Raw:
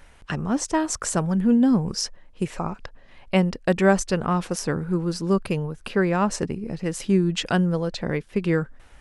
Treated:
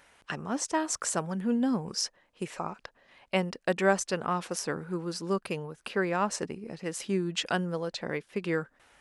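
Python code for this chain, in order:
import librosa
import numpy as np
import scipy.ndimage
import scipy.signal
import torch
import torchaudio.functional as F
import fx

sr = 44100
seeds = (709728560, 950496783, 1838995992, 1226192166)

y = fx.highpass(x, sr, hz=430.0, slope=6)
y = F.gain(torch.from_numpy(y), -3.5).numpy()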